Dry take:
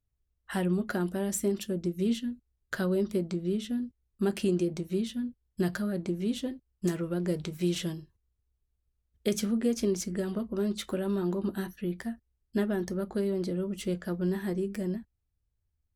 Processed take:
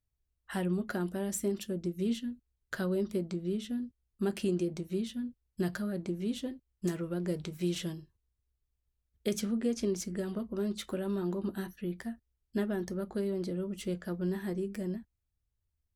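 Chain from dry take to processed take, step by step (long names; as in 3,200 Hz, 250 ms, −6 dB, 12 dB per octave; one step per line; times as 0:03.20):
0:09.41–0:09.95: low-pass filter 9,600 Hz 12 dB per octave
level −3.5 dB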